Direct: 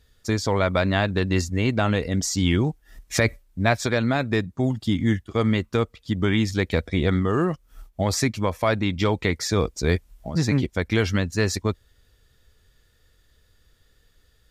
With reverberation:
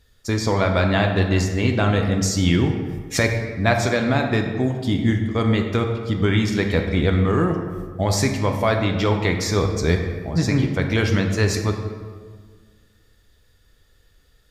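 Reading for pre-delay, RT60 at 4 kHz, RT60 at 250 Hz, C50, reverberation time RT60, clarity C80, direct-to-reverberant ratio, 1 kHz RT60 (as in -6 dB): 6 ms, 1.0 s, 2.0 s, 5.5 dB, 1.7 s, 7.5 dB, 3.0 dB, 1.6 s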